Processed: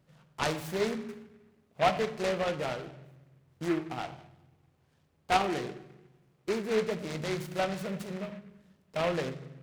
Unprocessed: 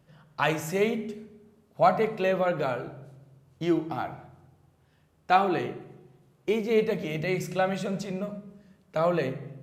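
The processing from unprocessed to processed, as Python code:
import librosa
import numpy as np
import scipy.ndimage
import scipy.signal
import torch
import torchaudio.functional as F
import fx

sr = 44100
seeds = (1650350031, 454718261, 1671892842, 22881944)

y = fx.noise_mod_delay(x, sr, seeds[0], noise_hz=1500.0, depth_ms=0.087)
y = y * 10.0 ** (-5.0 / 20.0)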